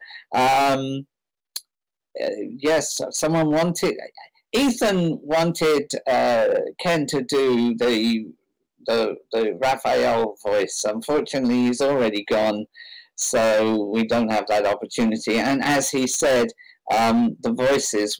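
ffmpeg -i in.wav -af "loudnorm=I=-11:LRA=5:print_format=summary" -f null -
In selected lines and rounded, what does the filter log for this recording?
Input Integrated:    -21.1 LUFS
Input True Peak:     -13.9 dBTP
Input LRA:             2.4 LU
Input Threshold:     -31.5 LUFS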